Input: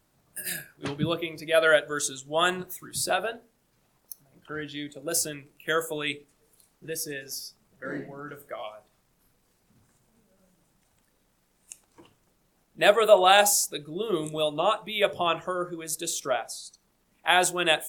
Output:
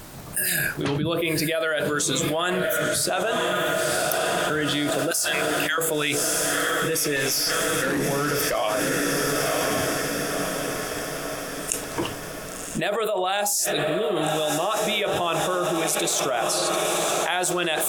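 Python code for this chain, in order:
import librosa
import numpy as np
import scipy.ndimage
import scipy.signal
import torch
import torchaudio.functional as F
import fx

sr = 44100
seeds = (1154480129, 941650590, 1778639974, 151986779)

p1 = fx.steep_highpass(x, sr, hz=840.0, slope=36, at=(5.11, 5.78))
p2 = p1 + fx.echo_diffused(p1, sr, ms=1041, feedback_pct=56, wet_db=-13.5, dry=0)
p3 = fx.tube_stage(p2, sr, drive_db=34.0, bias=0.3, at=(7.16, 8.55))
p4 = fx.env_flatten(p3, sr, amount_pct=100)
y = p4 * 10.0 ** (-12.5 / 20.0)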